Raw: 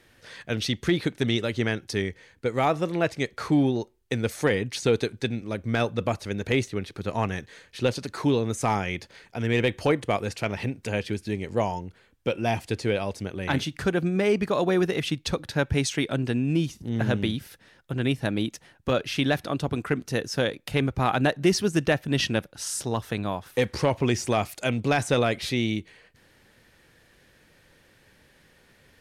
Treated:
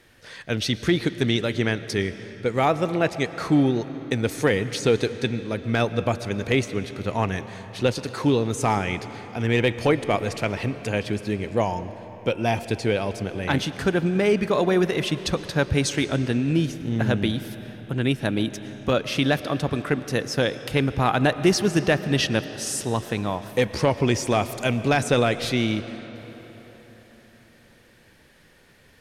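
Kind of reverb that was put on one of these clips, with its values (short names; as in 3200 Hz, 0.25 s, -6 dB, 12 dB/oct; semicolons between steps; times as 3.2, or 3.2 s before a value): digital reverb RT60 4.4 s, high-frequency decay 0.7×, pre-delay 75 ms, DRR 12.5 dB; gain +2.5 dB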